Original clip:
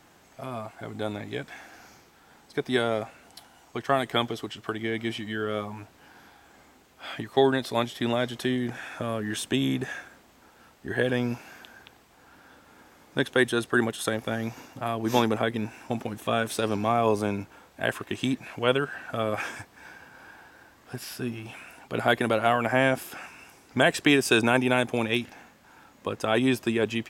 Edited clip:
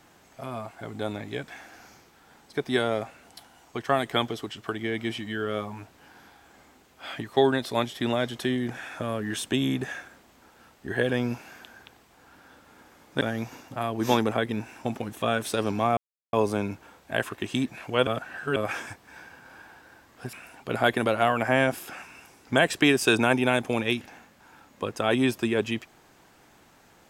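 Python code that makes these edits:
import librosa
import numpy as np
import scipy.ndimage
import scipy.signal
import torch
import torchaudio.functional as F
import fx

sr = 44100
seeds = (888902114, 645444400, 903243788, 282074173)

y = fx.edit(x, sr, fx.cut(start_s=13.21, length_s=1.05),
    fx.insert_silence(at_s=17.02, length_s=0.36),
    fx.reverse_span(start_s=18.76, length_s=0.49),
    fx.cut(start_s=21.02, length_s=0.55), tone=tone)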